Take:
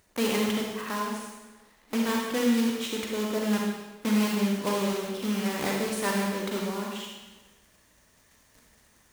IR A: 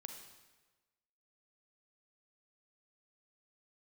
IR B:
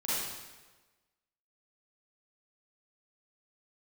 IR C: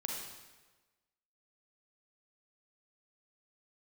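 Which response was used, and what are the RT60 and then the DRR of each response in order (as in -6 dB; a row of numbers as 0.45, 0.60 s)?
C; 1.3, 1.3, 1.3 s; 4.0, -11.0, -1.0 dB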